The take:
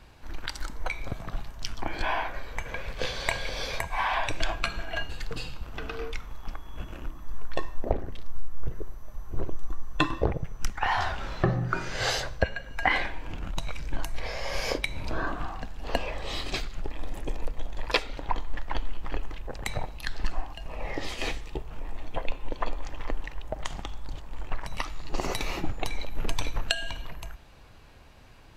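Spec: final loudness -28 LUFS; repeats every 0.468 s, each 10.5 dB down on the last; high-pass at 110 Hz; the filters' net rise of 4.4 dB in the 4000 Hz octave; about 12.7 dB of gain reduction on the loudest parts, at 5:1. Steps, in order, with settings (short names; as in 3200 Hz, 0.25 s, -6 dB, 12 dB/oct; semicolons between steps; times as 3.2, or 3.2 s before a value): HPF 110 Hz; bell 4000 Hz +5.5 dB; compressor 5:1, threshold -35 dBFS; feedback echo 0.468 s, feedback 30%, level -10.5 dB; gain +11.5 dB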